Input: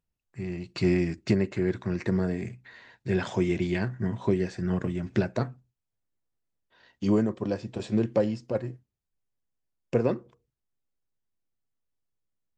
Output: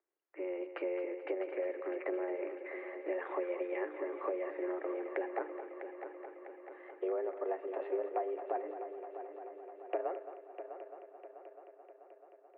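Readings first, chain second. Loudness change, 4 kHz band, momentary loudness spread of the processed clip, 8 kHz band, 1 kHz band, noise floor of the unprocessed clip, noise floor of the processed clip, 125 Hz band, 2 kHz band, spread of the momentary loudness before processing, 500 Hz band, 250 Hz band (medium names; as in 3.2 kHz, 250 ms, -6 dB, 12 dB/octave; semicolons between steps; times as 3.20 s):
-11.0 dB, under -20 dB, 16 LU, no reading, 0.0 dB, -85 dBFS, -61 dBFS, under -40 dB, -8.0 dB, 11 LU, -5.5 dB, -16.0 dB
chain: compression 6:1, threshold -35 dBFS, peak gain reduction 16 dB; multi-head delay 217 ms, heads first and third, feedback 70%, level -11.5 dB; mistuned SSB +180 Hz 170–2100 Hz; trim +2 dB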